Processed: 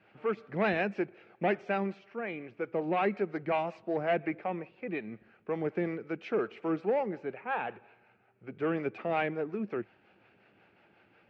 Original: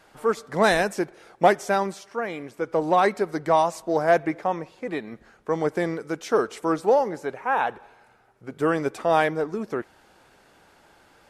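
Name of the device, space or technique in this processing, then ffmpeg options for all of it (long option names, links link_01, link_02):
guitar amplifier with harmonic tremolo: -filter_complex "[0:a]acrossover=split=410[link_01][link_02];[link_01]aeval=exprs='val(0)*(1-0.5/2+0.5/2*cos(2*PI*5.5*n/s))':channel_layout=same[link_03];[link_02]aeval=exprs='val(0)*(1-0.5/2-0.5/2*cos(2*PI*5.5*n/s))':channel_layout=same[link_04];[link_03][link_04]amix=inputs=2:normalize=0,asoftclip=type=tanh:threshold=-15dB,highpass=100,equalizer=frequency=110:width_type=q:width=4:gain=9,equalizer=frequency=200:width_type=q:width=4:gain=7,equalizer=frequency=360:width_type=q:width=4:gain=4,equalizer=frequency=1000:width_type=q:width=4:gain=-6,equalizer=frequency=2500:width_type=q:width=4:gain=9,lowpass=frequency=3400:width=0.5412,lowpass=frequency=3400:width=1.3066,equalizer=frequency=3600:width_type=o:width=0.26:gain=-5,volume=-6dB"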